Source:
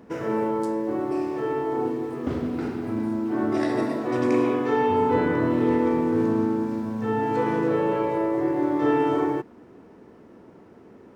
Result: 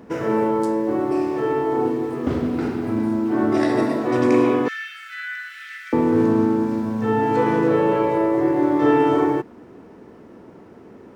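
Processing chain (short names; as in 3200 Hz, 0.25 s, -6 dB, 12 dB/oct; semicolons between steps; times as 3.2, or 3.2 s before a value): 4.68–5.93 steep high-pass 1400 Hz 96 dB/oct; gain +5 dB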